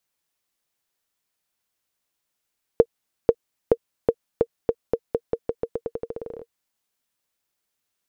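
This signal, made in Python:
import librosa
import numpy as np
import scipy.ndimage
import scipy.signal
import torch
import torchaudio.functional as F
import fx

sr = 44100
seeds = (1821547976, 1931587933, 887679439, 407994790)

y = fx.bouncing_ball(sr, first_gap_s=0.49, ratio=0.87, hz=464.0, decay_ms=56.0, level_db=-2.0)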